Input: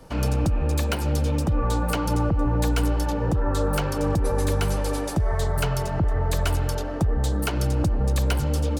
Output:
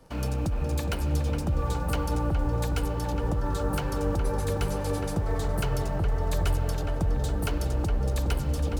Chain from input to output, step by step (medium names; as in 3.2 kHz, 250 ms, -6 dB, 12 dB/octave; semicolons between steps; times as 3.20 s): in parallel at -11.5 dB: bit crusher 6-bit; on the sum: filtered feedback delay 415 ms, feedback 74%, low-pass 2.2 kHz, level -6 dB; trim -8 dB